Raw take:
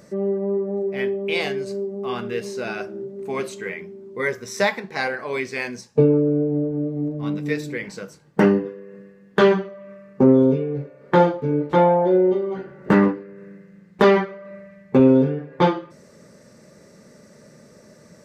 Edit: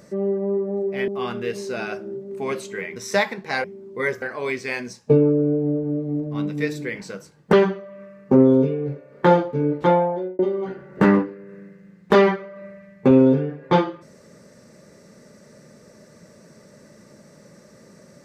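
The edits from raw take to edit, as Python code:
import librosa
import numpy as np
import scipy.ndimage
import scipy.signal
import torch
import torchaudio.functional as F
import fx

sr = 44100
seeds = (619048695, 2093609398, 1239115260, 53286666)

y = fx.edit(x, sr, fx.cut(start_s=1.08, length_s=0.88),
    fx.move(start_s=3.84, length_s=0.58, to_s=5.1),
    fx.cut(start_s=8.41, length_s=1.01),
    fx.fade_out_span(start_s=11.74, length_s=0.54), tone=tone)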